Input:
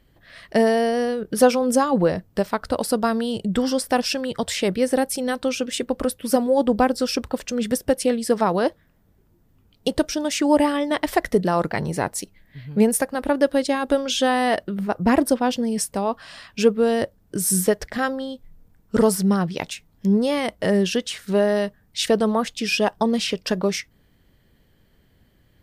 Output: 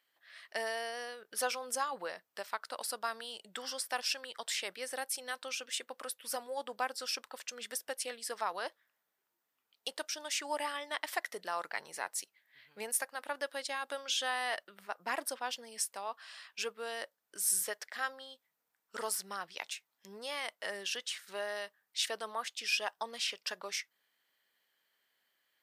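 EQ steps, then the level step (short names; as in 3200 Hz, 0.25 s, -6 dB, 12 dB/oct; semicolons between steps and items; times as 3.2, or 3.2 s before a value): HPF 1100 Hz 12 dB/oct; -8.5 dB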